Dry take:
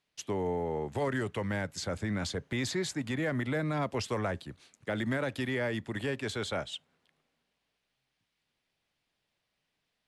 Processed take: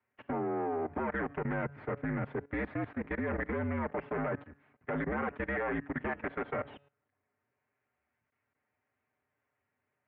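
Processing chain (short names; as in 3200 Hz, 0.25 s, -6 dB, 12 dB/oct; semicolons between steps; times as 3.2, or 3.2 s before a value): minimum comb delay 6.2 ms; mistuned SSB -59 Hz 160–2200 Hz; in parallel at -1.5 dB: limiter -31 dBFS, peak gain reduction 8.5 dB; on the sum: de-hum 141.7 Hz, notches 38; level quantiser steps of 17 dB; gain +1 dB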